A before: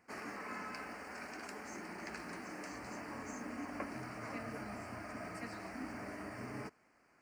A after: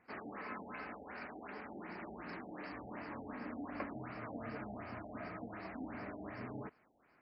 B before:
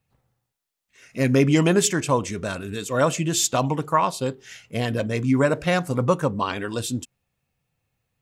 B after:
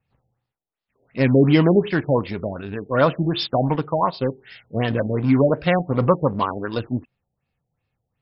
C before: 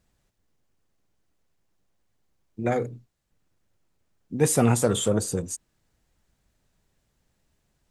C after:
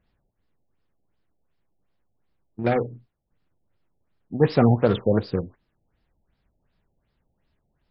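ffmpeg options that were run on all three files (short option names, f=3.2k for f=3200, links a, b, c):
-filter_complex "[0:a]asplit=2[a][b];[b]acrusher=bits=3:mix=0:aa=0.5,volume=-7.5dB[c];[a][c]amix=inputs=2:normalize=0,afftfilt=real='re*lt(b*sr/1024,840*pow(5500/840,0.5+0.5*sin(2*PI*2.7*pts/sr)))':imag='im*lt(b*sr/1024,840*pow(5500/840,0.5+0.5*sin(2*PI*2.7*pts/sr)))':win_size=1024:overlap=0.75"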